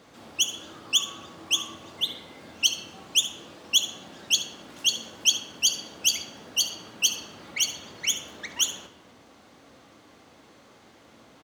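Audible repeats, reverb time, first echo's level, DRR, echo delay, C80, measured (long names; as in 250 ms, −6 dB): 1, 1.3 s, −14.5 dB, 8.5 dB, 71 ms, 16.0 dB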